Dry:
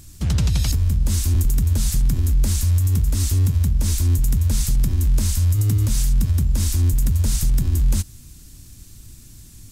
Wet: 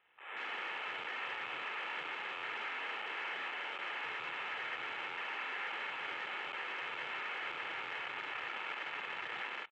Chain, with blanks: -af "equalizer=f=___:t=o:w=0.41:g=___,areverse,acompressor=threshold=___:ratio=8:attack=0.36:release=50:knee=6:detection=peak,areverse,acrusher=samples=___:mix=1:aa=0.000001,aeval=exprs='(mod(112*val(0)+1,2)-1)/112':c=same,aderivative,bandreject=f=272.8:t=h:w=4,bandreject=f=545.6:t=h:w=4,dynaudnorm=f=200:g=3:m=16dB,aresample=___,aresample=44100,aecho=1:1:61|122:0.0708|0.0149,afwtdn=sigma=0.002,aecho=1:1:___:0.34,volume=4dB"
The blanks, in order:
130, -2.5, -28dB, 12, 8000, 2.3